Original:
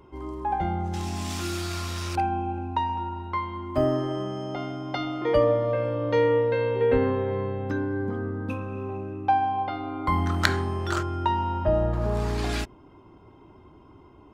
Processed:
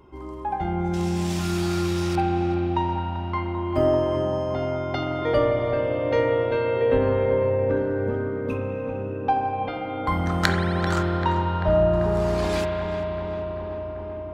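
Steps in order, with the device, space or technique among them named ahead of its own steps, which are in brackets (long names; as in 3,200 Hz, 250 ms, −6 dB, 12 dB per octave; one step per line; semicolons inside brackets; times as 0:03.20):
0:07.25–0:07.77: low-pass filter 2,100 Hz 12 dB per octave
dub delay into a spring reverb (feedback echo with a low-pass in the loop 390 ms, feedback 83%, low-pass 2,500 Hz, level −10 dB; spring reverb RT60 3.4 s, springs 40 ms, chirp 50 ms, DRR 2 dB)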